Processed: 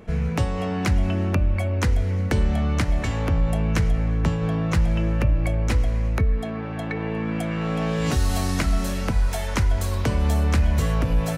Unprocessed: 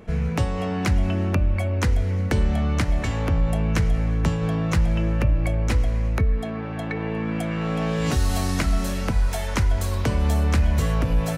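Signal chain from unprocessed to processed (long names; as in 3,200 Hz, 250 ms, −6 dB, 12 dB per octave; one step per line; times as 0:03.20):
0:03.92–0:04.74: high-shelf EQ 4,900 Hz −5.5 dB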